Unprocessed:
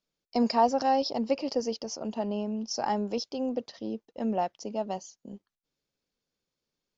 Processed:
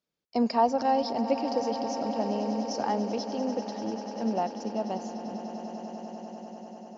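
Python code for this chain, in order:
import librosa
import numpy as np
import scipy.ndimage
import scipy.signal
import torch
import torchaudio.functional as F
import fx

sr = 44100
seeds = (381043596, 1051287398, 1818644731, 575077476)

y = scipy.signal.sosfilt(scipy.signal.butter(2, 55.0, 'highpass', fs=sr, output='sos'), x)
y = fx.high_shelf(y, sr, hz=4200.0, db=-7.0)
y = fx.echo_swell(y, sr, ms=98, loudest=8, wet_db=-16.0)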